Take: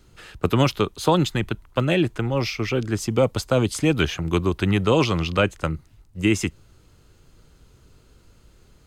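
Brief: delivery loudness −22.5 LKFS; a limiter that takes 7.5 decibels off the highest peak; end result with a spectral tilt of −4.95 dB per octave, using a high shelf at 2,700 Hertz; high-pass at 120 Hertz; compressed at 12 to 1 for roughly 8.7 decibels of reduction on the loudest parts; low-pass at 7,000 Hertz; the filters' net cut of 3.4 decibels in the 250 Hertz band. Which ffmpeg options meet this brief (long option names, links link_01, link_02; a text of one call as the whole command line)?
ffmpeg -i in.wav -af "highpass=120,lowpass=7000,equalizer=frequency=250:width_type=o:gain=-4.5,highshelf=frequency=2700:gain=-5,acompressor=threshold=-24dB:ratio=12,volume=9.5dB,alimiter=limit=-10dB:level=0:latency=1" out.wav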